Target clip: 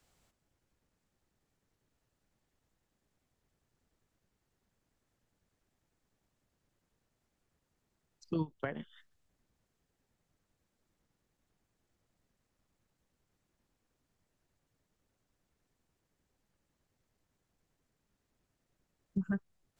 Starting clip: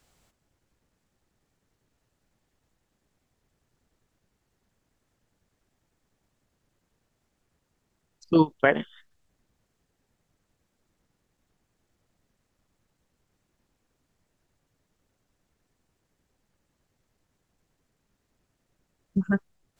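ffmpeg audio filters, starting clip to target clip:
ffmpeg -i in.wav -filter_complex "[0:a]acrossover=split=180[link_01][link_02];[link_02]acompressor=threshold=-30dB:ratio=6[link_03];[link_01][link_03]amix=inputs=2:normalize=0,volume=-6dB" out.wav

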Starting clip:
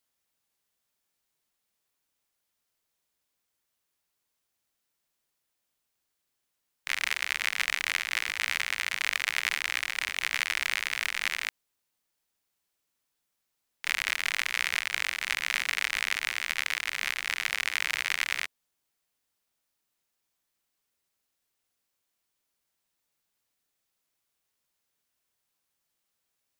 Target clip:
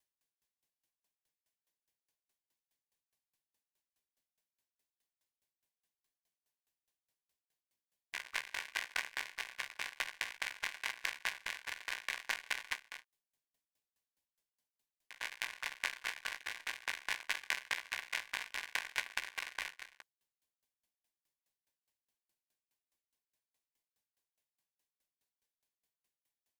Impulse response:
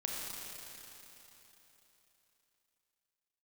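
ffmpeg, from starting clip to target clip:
-filter_complex "[0:a]areverse,asplit=2[link_01][link_02];[link_02]asetrate=29433,aresample=44100,atempo=1.49831,volume=-2dB[link_03];[link_01][link_03]amix=inputs=2:normalize=0,asuperstop=centerf=1300:order=4:qfactor=4.3,asplit=2[link_04][link_05];[link_05]adelay=15,volume=-10dB[link_06];[link_04][link_06]amix=inputs=2:normalize=0,aecho=1:1:268:0.251,aeval=exprs='val(0)*pow(10,-31*if(lt(mod(4.8*n/s,1),2*abs(4.8)/1000),1-mod(4.8*n/s,1)/(2*abs(4.8)/1000),(mod(4.8*n/s,1)-2*abs(4.8)/1000)/(1-2*abs(4.8)/1000))/20)':channel_layout=same,volume=-4dB"

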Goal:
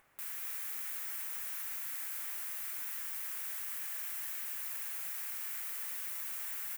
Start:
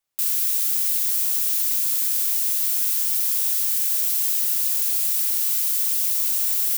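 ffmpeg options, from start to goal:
ffmpeg -i in.wav -filter_complex "[0:a]highshelf=frequency=2800:width_type=q:width=1.5:gain=-13.5,acompressor=mode=upward:threshold=-43dB:ratio=2.5,asplit=2[link_01][link_02];[link_02]aecho=0:1:244:0.531[link_03];[link_01][link_03]amix=inputs=2:normalize=0,volume=-6dB" out.wav

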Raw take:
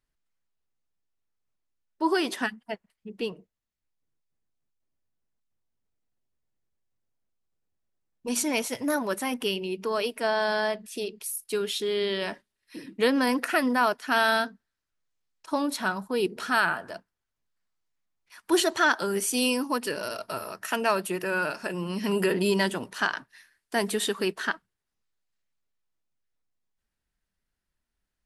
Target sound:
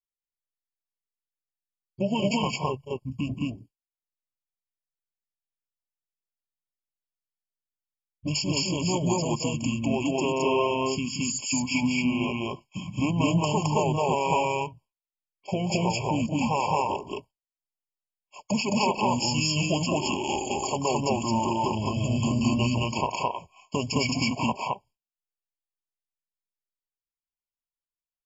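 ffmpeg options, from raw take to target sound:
ffmpeg -i in.wav -filter_complex "[0:a]agate=range=-33dB:threshold=-44dB:ratio=3:detection=peak,highshelf=frequency=2500:gain=7.5,acompressor=threshold=-36dB:ratio=2.5,asplit=2[link_01][link_02];[link_02]asetrate=29433,aresample=44100,atempo=1.49831,volume=-12dB[link_03];[link_01][link_03]amix=inputs=2:normalize=0,acontrast=89,asetrate=26990,aresample=44100,atempo=1.63392,aecho=1:1:180.8|215.7:0.355|1,afftfilt=real='re*eq(mod(floor(b*sr/1024/1100),2),0)':imag='im*eq(mod(floor(b*sr/1024/1100),2),0)':win_size=1024:overlap=0.75" out.wav

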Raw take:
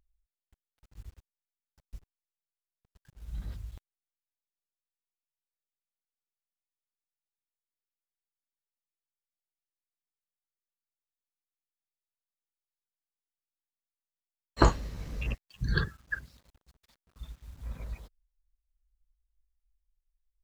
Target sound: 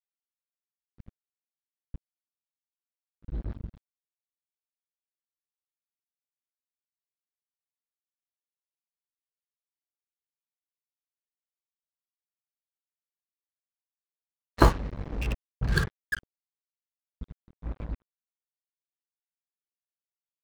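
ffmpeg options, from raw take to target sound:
ffmpeg -i in.wav -af "adynamicsmooth=sensitivity=7.5:basefreq=1700,acrusher=bits=5:mix=0:aa=0.5,volume=3dB" out.wav

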